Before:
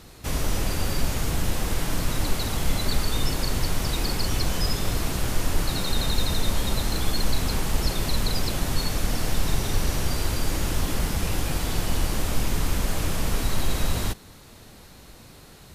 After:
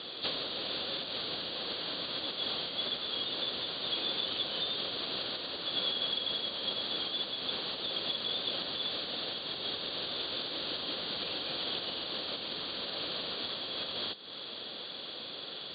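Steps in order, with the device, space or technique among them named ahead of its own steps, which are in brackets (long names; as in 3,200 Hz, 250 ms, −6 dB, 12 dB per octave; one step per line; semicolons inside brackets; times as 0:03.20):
hearing aid with frequency lowering (hearing-aid frequency compression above 3,200 Hz 4 to 1; downward compressor 4 to 1, threshold −35 dBFS, peak gain reduction 17 dB; loudspeaker in its box 340–6,000 Hz, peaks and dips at 530 Hz +4 dB, 890 Hz −5 dB, 2,100 Hz −5 dB, 3,100 Hz +10 dB, 5,500 Hz −7 dB)
level +4.5 dB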